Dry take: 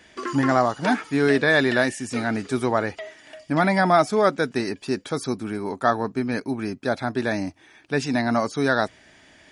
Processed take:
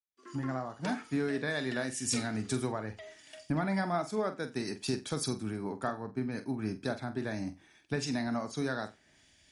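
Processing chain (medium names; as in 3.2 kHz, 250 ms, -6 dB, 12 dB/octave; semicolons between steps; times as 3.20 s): fade-in on the opening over 1.22 s; compression 4:1, threshold -35 dBFS, peak gain reduction 18.5 dB; tone controls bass +6 dB, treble +5 dB; flutter echo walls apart 7.9 m, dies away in 0.28 s; three bands expanded up and down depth 100%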